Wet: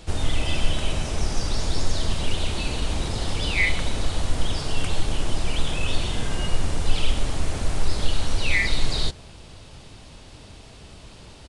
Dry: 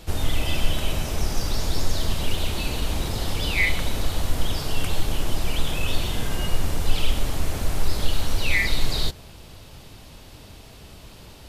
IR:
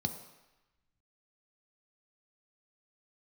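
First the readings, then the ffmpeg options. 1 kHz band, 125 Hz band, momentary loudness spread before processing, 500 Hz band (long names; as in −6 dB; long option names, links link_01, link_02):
0.0 dB, 0.0 dB, 22 LU, 0.0 dB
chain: -af "aresample=22050,aresample=44100"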